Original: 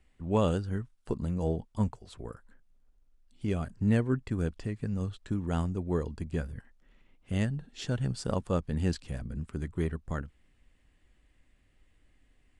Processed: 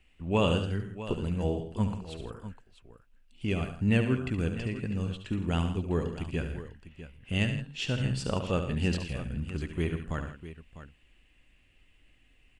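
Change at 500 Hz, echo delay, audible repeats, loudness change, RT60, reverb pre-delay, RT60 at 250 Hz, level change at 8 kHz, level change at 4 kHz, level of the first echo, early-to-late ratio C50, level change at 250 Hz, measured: +1.0 dB, 71 ms, 4, +1.0 dB, no reverb audible, no reverb audible, no reverb audible, +1.5 dB, +8.5 dB, −8.5 dB, no reverb audible, +1.0 dB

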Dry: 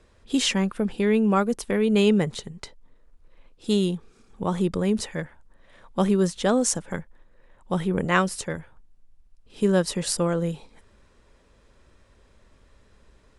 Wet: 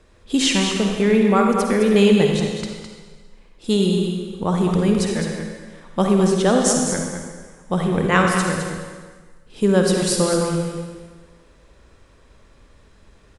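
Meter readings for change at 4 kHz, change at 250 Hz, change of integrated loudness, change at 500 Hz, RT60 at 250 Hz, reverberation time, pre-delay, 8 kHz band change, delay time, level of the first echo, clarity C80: +6.0 dB, +5.5 dB, +5.5 dB, +6.0 dB, 1.4 s, 1.5 s, 40 ms, +6.0 dB, 210 ms, −8.0 dB, 2.5 dB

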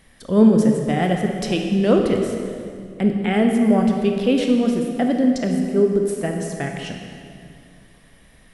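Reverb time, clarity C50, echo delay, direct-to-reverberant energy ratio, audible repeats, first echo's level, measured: 2.4 s, 3.5 dB, no echo audible, 2.5 dB, no echo audible, no echo audible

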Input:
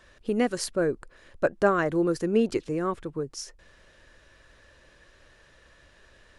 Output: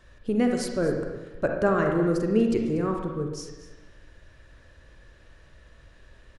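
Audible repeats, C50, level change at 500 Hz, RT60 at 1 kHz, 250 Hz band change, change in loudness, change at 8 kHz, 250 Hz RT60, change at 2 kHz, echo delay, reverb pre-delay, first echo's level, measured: 1, 3.0 dB, +0.5 dB, 1.1 s, +3.0 dB, +1.5 dB, −3.0 dB, 1.4 s, −1.0 dB, 239 ms, 37 ms, −16.0 dB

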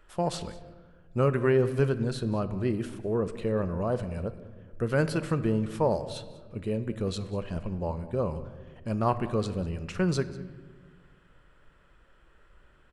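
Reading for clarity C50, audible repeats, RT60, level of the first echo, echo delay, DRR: 13.0 dB, 1, 1.5 s, −20.5 dB, 194 ms, 11.5 dB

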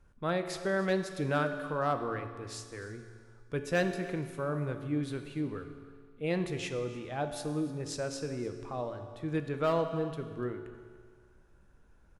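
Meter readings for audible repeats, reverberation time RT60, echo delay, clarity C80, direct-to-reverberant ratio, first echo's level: 1, 1.8 s, 293 ms, 9.5 dB, 6.5 dB, −19.0 dB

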